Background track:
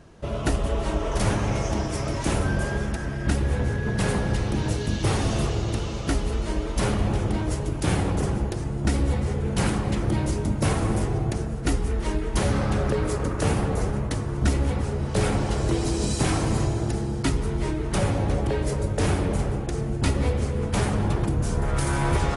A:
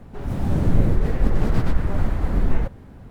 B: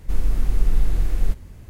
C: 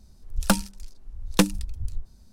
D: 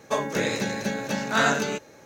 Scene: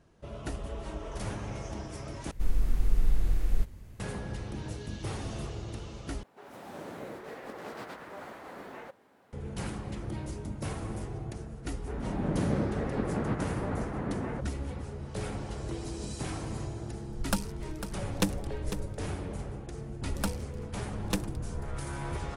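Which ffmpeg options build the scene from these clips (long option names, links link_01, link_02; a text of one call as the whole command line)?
ffmpeg -i bed.wav -i cue0.wav -i cue1.wav -i cue2.wav -filter_complex "[1:a]asplit=2[link_01][link_02];[3:a]asplit=2[link_03][link_04];[0:a]volume=-13dB[link_05];[link_01]highpass=490[link_06];[link_02]highpass=170,lowpass=2400[link_07];[link_03]aecho=1:1:500:0.282[link_08];[link_05]asplit=3[link_09][link_10][link_11];[link_09]atrim=end=2.314[link_12];[2:a]atrim=end=1.69,asetpts=PTS-STARTPTS,volume=-6.5dB[link_13];[link_10]atrim=start=3.996:end=6.234[link_14];[link_06]atrim=end=3.1,asetpts=PTS-STARTPTS,volume=-8.5dB[link_15];[link_11]atrim=start=9.326[link_16];[link_07]atrim=end=3.1,asetpts=PTS-STARTPTS,volume=-4.5dB,afade=type=in:duration=0.004:curve=hsin,afade=type=out:start_time=3.096:duration=0.004:curve=hsin,adelay=11730[link_17];[link_08]atrim=end=2.32,asetpts=PTS-STARTPTS,volume=-9dB,afade=type=in:duration=0.004:curve=hsin,afade=type=out:start_time=2.316:duration=0.004:curve=hsin,adelay=16830[link_18];[link_04]atrim=end=2.32,asetpts=PTS-STARTPTS,volume=-12dB,afade=type=in:duration=0.004:curve=hsin,afade=type=out:start_time=2.316:duration=0.004:curve=hsin,adelay=19740[link_19];[link_12][link_13]acrossfade=duration=0.004:curve1=hsin:curve2=hsin[link_20];[link_20][link_14]acrossfade=duration=0.004:curve1=hsin:curve2=hsin[link_21];[link_21][link_15]acrossfade=duration=0.004:curve1=hsin:curve2=hsin[link_22];[link_22][link_16]acrossfade=duration=0.004:curve1=hsin:curve2=hsin[link_23];[link_23][link_17][link_18][link_19]amix=inputs=4:normalize=0" out.wav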